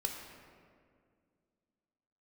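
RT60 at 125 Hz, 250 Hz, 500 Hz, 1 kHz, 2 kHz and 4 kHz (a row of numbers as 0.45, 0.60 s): 2.5, 2.8, 2.3, 1.9, 1.7, 1.1 s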